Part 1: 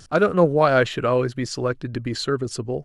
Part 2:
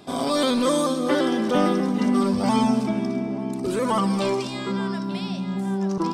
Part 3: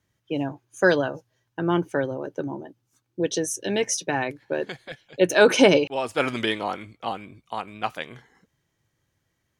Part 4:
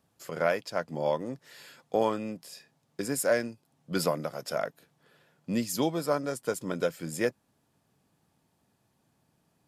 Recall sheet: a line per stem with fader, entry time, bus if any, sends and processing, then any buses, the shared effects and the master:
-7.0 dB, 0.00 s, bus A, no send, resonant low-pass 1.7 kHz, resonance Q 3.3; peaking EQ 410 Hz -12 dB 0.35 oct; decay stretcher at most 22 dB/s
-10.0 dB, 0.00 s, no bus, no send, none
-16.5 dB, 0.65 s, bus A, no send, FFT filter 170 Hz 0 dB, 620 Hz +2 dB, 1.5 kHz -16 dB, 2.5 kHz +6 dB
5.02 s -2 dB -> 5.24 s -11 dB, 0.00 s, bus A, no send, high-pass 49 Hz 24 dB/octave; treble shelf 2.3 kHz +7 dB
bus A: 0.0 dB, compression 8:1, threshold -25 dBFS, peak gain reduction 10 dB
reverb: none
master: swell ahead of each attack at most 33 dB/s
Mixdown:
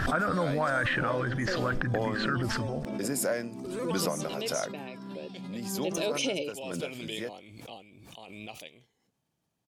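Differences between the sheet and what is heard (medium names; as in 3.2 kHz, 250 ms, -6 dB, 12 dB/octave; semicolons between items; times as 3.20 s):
stem 2 -10.0 dB -> -19.5 dB; stem 4: missing treble shelf 2.3 kHz +7 dB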